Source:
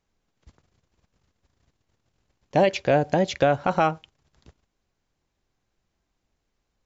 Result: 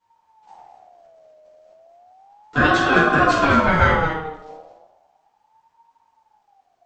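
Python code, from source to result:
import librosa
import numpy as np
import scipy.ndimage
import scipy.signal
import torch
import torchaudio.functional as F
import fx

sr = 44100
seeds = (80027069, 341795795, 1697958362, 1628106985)

y = x + 10.0 ** (-9.5 / 20.0) * np.pad(x, (int(212 * sr / 1000.0), 0))[:len(x)]
y = fx.room_shoebox(y, sr, seeds[0], volume_m3=240.0, walls='mixed', distance_m=4.8)
y = fx.ring_lfo(y, sr, carrier_hz=770.0, swing_pct=20, hz=0.34)
y = y * 10.0 ** (-5.0 / 20.0)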